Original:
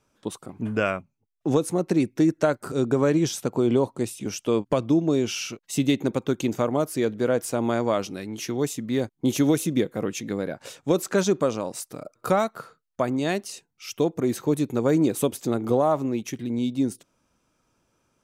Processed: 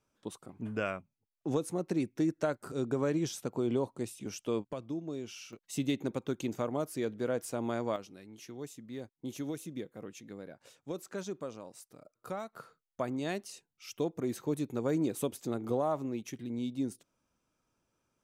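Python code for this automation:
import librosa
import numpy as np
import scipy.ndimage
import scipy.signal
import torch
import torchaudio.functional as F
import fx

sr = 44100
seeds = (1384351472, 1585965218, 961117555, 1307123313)

y = fx.gain(x, sr, db=fx.steps((0.0, -10.0), (4.67, -17.0), (5.53, -10.0), (7.96, -17.5), (12.53, -10.0)))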